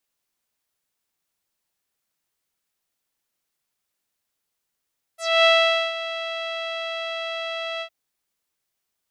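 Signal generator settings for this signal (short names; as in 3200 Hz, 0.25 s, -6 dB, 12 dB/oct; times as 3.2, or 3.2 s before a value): synth note saw E5 12 dB/oct, low-pass 3200 Hz, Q 3.8, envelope 2 oct, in 0.11 s, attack 0.265 s, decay 0.48 s, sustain -14.5 dB, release 0.08 s, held 2.63 s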